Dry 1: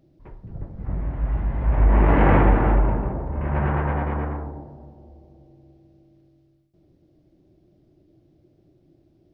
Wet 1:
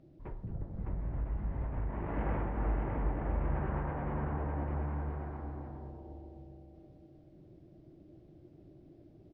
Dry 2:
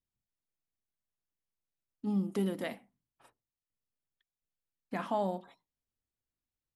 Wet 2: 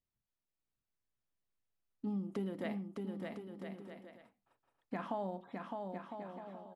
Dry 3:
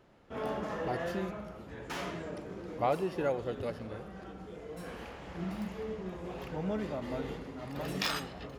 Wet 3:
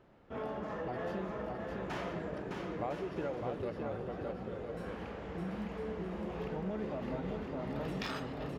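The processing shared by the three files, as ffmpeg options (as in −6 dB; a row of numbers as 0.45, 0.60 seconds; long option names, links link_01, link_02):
-filter_complex "[0:a]lowpass=frequency=2400:poles=1,acompressor=threshold=-36dB:ratio=4,asplit=2[link_01][link_02];[link_02]aecho=0:1:610|1006|1264|1432|1541:0.631|0.398|0.251|0.158|0.1[link_03];[link_01][link_03]amix=inputs=2:normalize=0"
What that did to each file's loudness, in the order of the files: −15.5, −7.5, −2.5 LU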